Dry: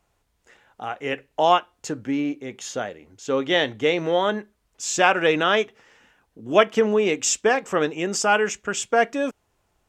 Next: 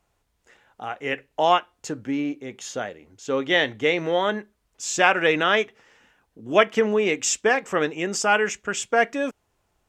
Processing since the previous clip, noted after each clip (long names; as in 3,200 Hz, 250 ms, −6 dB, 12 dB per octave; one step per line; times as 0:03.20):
dynamic equaliser 2,000 Hz, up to +5 dB, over −37 dBFS, Q 2.1
level −1.5 dB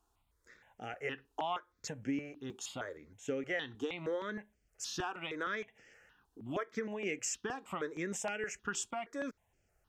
downward compressor 8 to 1, threshold −27 dBFS, peak gain reduction 16.5 dB
step-sequenced phaser 6.4 Hz 570–3,800 Hz
level −3.5 dB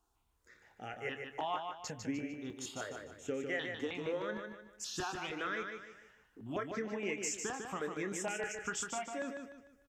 double-tracking delay 27 ms −12 dB
repeating echo 150 ms, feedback 37%, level −5.5 dB
level −1.5 dB